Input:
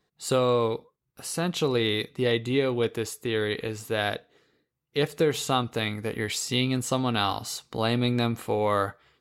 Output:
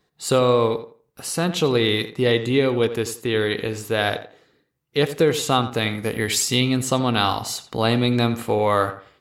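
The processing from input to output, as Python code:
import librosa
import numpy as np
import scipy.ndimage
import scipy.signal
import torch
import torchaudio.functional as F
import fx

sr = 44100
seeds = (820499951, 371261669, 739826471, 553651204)

y = fx.high_shelf(x, sr, hz=5700.0, db=7.0, at=(6.0, 6.55))
y = fx.echo_tape(y, sr, ms=86, feedback_pct=27, wet_db=-10.5, lp_hz=2600.0, drive_db=16.0, wow_cents=33)
y = y * 10.0 ** (5.5 / 20.0)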